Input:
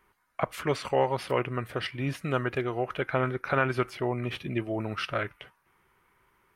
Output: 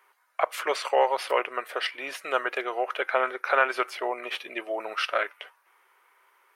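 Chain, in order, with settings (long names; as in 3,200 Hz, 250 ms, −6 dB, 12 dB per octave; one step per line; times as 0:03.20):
high-pass filter 490 Hz 24 dB per octave
level +5 dB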